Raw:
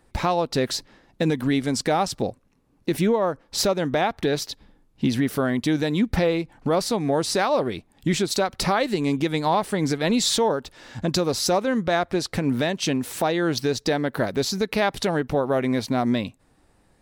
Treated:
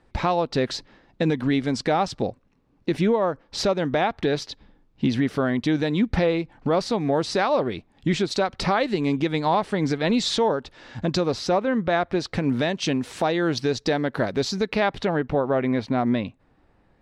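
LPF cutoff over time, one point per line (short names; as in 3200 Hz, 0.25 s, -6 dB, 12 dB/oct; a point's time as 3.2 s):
11.2 s 4600 Hz
11.65 s 2700 Hz
12.52 s 5600 Hz
14.54 s 5600 Hz
15.06 s 2900 Hz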